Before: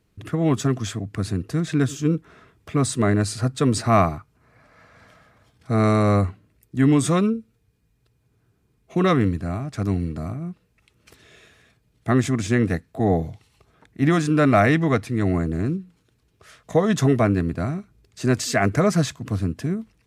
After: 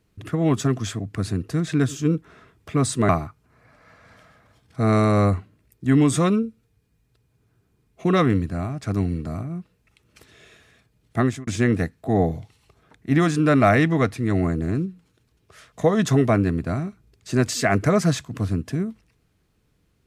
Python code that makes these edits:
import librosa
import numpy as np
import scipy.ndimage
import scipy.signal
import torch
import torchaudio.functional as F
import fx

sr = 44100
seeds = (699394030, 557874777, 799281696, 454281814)

y = fx.edit(x, sr, fx.cut(start_s=3.09, length_s=0.91),
    fx.fade_out_span(start_s=12.1, length_s=0.28), tone=tone)